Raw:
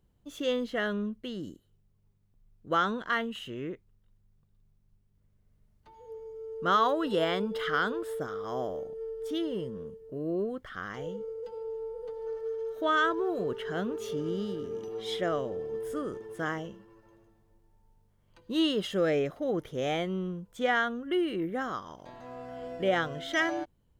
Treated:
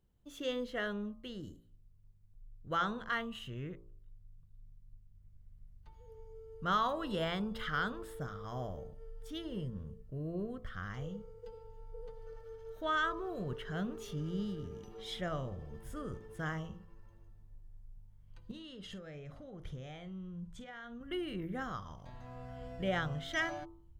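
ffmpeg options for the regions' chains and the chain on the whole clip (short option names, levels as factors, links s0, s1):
-filter_complex "[0:a]asettb=1/sr,asplit=3[s0][s1][s2];[s0]atrim=end=18.514[s3];[s1]atrim=start=18.51:end=21.01,asetpts=PTS-STARTPTS,afade=t=in:d=0.004:c=qsin,afade=t=out:st=2.496:d=0.004:c=qsin,lowpass=8700,acompressor=threshold=0.0112:ratio=8:attack=3.2:release=140:knee=1:detection=peak,asplit=2[s4][s5];[s5]adelay=47,volume=0.224[s6];[s4][s6]amix=inputs=2:normalize=0,atrim=end_sample=110250[s7];[s2]atrim=start=21.006[s8];[s3][s7]acrossfade=d=0.004:c1=hsin:c2=qsin[s9];[s9][s8]acrossfade=d=0.004:c1=qsin:c2=hsin,bandreject=f=55.84:t=h:w=4,bandreject=f=111.68:t=h:w=4,bandreject=f=167.52:t=h:w=4,bandreject=f=223.36:t=h:w=4,bandreject=f=279.2:t=h:w=4,bandreject=f=335.04:t=h:w=4,bandreject=f=390.88:t=h:w=4,bandreject=f=446.72:t=h:w=4,bandreject=f=502.56:t=h:w=4,bandreject=f=558.4:t=h:w=4,bandreject=f=614.24:t=h:w=4,bandreject=f=670.08:t=h:w=4,bandreject=f=725.92:t=h:w=4,bandreject=f=781.76:t=h:w=4,bandreject=f=837.6:t=h:w=4,bandreject=f=893.44:t=h:w=4,bandreject=f=949.28:t=h:w=4,bandreject=f=1005.12:t=h:w=4,bandreject=f=1060.96:t=h:w=4,bandreject=f=1116.8:t=h:w=4,bandreject=f=1172.64:t=h:w=4,bandreject=f=1228.48:t=h:w=4,bandreject=f=1284.32:t=h:w=4,asubboost=boost=9:cutoff=110,volume=0.531"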